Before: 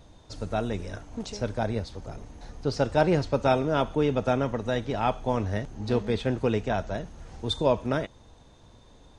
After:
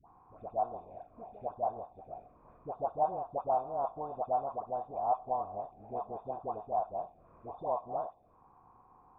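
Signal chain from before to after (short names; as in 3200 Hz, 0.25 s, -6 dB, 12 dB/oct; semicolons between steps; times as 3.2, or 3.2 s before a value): per-bin compression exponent 0.6; transient shaper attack +5 dB, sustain -7 dB; envelope phaser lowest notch 510 Hz, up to 2200 Hz, full sweep at -18.5 dBFS; vocal tract filter a; dispersion highs, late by 86 ms, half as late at 890 Hz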